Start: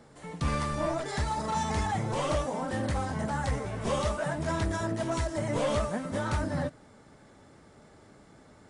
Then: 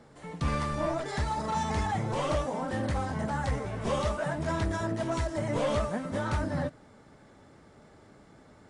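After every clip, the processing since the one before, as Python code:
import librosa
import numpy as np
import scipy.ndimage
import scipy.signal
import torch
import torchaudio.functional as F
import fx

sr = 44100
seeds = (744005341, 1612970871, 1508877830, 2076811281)

y = fx.high_shelf(x, sr, hz=7100.0, db=-7.0)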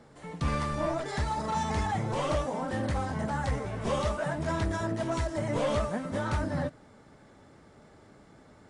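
y = x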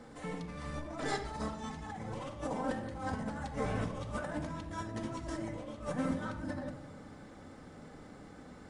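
y = fx.over_compress(x, sr, threshold_db=-35.0, ratio=-0.5)
y = fx.room_shoebox(y, sr, seeds[0], volume_m3=3500.0, walls='furnished', distance_m=2.0)
y = y * 10.0 ** (-4.0 / 20.0)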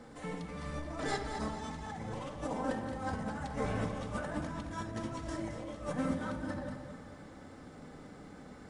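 y = fx.echo_feedback(x, sr, ms=219, feedback_pct=46, wet_db=-9.0)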